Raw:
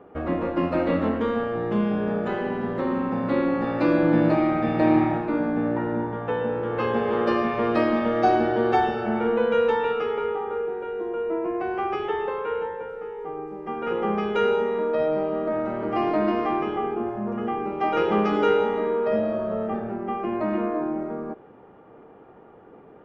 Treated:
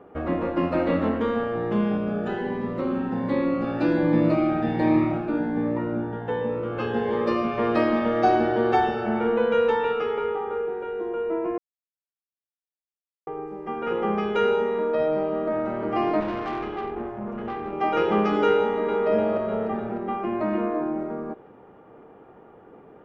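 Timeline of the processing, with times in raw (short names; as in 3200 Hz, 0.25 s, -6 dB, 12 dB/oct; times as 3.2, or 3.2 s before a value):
1.97–7.58 cascading phaser rising 1.3 Hz
11.58–13.27 mute
16.2–17.73 tube stage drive 24 dB, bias 0.7
18.58–19.07 echo throw 0.3 s, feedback 60%, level -4.5 dB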